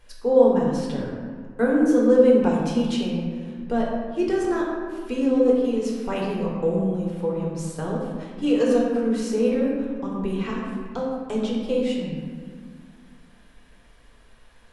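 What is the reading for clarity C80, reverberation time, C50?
2.0 dB, 1.9 s, 0.5 dB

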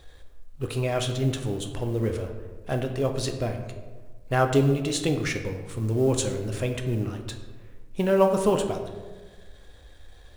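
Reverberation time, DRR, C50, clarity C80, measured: 1.4 s, 4.5 dB, 8.0 dB, 9.5 dB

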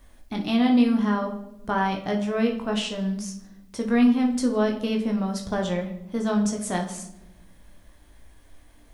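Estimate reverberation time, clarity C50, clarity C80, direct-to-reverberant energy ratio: non-exponential decay, 8.0 dB, 12.0 dB, 1.5 dB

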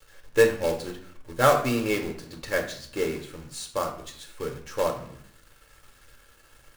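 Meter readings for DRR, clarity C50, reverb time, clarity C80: 2.5 dB, 9.5 dB, 0.60 s, 12.5 dB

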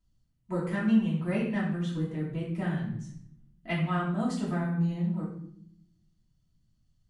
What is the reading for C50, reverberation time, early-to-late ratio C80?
4.0 dB, 0.65 s, 7.0 dB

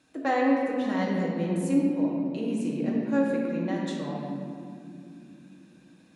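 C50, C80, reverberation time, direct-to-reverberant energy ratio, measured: −0.5 dB, 1.5 dB, non-exponential decay, −3.5 dB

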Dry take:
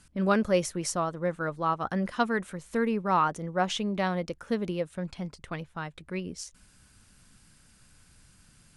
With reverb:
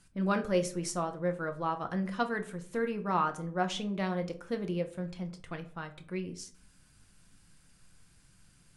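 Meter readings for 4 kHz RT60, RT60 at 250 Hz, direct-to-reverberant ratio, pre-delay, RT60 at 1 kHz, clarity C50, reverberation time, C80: 0.30 s, 0.65 s, 5.5 dB, 6 ms, 0.45 s, 15.0 dB, 0.50 s, 19.0 dB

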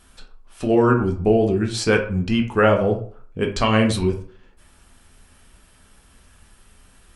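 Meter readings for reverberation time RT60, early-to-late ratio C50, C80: 0.45 s, 9.5 dB, 14.0 dB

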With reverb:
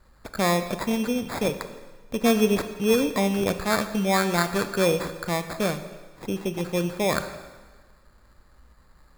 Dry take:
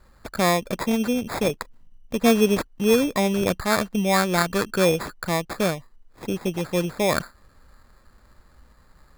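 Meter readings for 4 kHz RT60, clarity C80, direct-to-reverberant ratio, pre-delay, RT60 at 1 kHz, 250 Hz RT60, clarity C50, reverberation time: 1.3 s, 12.0 dB, 9.0 dB, 6 ms, 1.4 s, 1.3 s, 11.0 dB, 1.4 s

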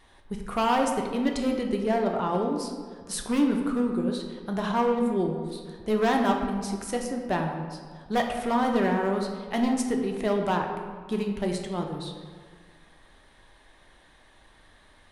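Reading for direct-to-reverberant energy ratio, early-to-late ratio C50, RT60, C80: 2.0 dB, 4.5 dB, 1.7 s, 6.0 dB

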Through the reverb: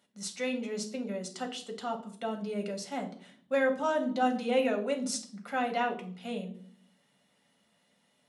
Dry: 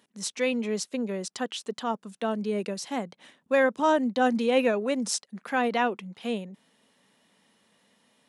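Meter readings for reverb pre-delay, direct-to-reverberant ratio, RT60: 5 ms, 3.0 dB, 0.55 s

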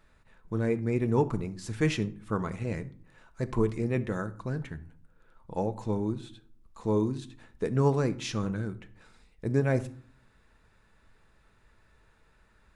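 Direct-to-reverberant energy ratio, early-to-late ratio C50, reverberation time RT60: 10.5 dB, 17.0 dB, 0.50 s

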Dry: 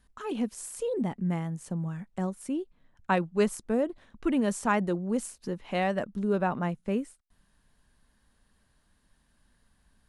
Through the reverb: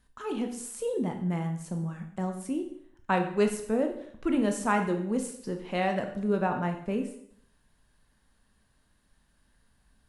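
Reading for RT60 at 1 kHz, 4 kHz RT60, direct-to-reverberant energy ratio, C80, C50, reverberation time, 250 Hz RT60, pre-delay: 0.70 s, 0.60 s, 4.5 dB, 11.5 dB, 8.5 dB, 0.70 s, 0.70 s, 12 ms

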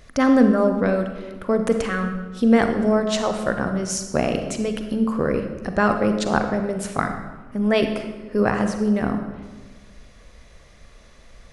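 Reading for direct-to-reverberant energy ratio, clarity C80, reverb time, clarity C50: 6.0 dB, 8.5 dB, 1.3 s, 7.0 dB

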